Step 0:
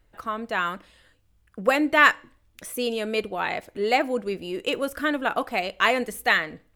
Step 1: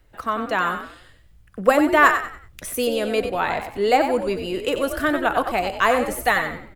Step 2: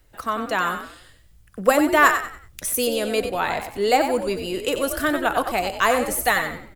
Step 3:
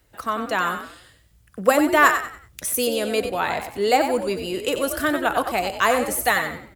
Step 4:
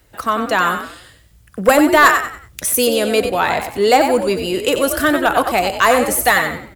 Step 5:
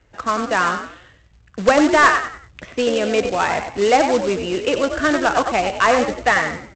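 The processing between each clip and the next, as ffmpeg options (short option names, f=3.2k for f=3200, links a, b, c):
-filter_complex "[0:a]asubboost=boost=3.5:cutoff=110,acrossover=split=200|1600|5800[a][b][c][d];[c]acompressor=threshold=-37dB:ratio=6[e];[a][b][e][d]amix=inputs=4:normalize=0,asplit=5[f][g][h][i][j];[g]adelay=93,afreqshift=55,volume=-8dB[k];[h]adelay=186,afreqshift=110,volume=-17.9dB[l];[i]adelay=279,afreqshift=165,volume=-27.8dB[m];[j]adelay=372,afreqshift=220,volume=-37.7dB[n];[f][k][l][m][n]amix=inputs=5:normalize=0,volume=5.5dB"
-af "bass=f=250:g=0,treble=f=4k:g=8,volume=-1dB"
-af "highpass=54"
-af "asoftclip=type=tanh:threshold=-9dB,volume=7.5dB"
-af "lowpass=f=3k:w=0.5412,lowpass=f=3k:w=1.3066,aresample=16000,acrusher=bits=3:mode=log:mix=0:aa=0.000001,aresample=44100,volume=-2.5dB"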